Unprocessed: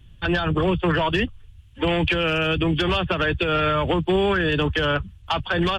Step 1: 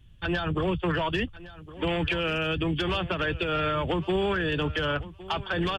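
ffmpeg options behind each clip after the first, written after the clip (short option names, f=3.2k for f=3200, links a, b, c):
-af "aecho=1:1:1112|2224:0.133|0.02,volume=-6dB"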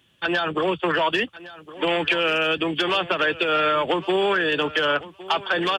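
-af "highpass=360,volume=7.5dB"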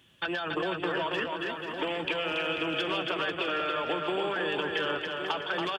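-af "acompressor=threshold=-30dB:ratio=6,aecho=1:1:280|490|647.5|765.6|854.2:0.631|0.398|0.251|0.158|0.1"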